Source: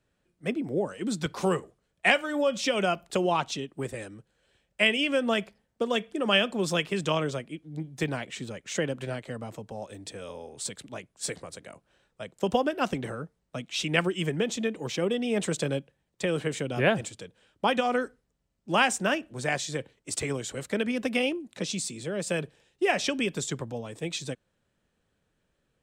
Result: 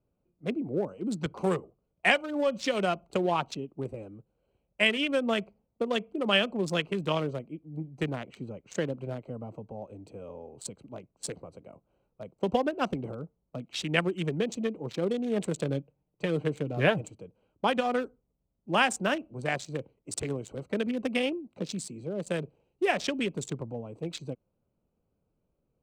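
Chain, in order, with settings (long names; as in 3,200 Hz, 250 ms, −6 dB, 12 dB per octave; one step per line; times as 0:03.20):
adaptive Wiener filter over 25 samples
0:15.68–0:17.15: comb filter 6.6 ms, depth 37%
level −1 dB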